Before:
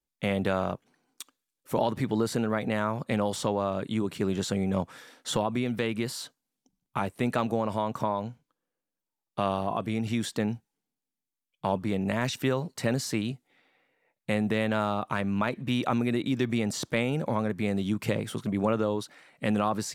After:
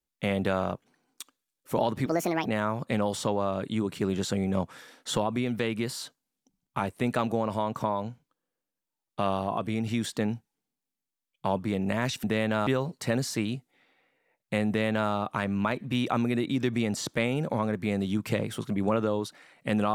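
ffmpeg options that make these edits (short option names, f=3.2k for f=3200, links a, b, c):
-filter_complex "[0:a]asplit=5[a][b][c][d][e];[a]atrim=end=2.064[f];[b]atrim=start=2.06:end=2.65,asetpts=PTS-STARTPTS,asetrate=65709,aresample=44100,atrim=end_sample=17462,asetpts=PTS-STARTPTS[g];[c]atrim=start=2.646:end=12.432[h];[d]atrim=start=14.438:end=14.872[i];[e]atrim=start=12.428[j];[f][g]acrossfade=d=0.004:c1=hsin:c2=hsin[k];[k][h]acrossfade=d=0.004:c1=hsin:c2=hsin[l];[l][i]acrossfade=d=0.004:c1=hsin:c2=hsin[m];[m][j]acrossfade=d=0.004:c1=hsin:c2=hsin"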